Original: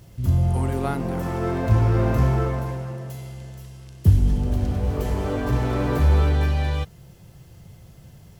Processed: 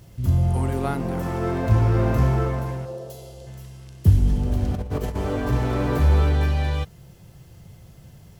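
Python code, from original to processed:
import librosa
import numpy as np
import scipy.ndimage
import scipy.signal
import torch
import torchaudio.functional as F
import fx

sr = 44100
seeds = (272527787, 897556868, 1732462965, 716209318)

y = fx.graphic_eq(x, sr, hz=(125, 250, 500, 1000, 2000, 4000), db=(-8, -7, 10, -4, -11, 4), at=(2.85, 3.47))
y = fx.over_compress(y, sr, threshold_db=-26.0, ratio=-0.5, at=(4.74, 5.17))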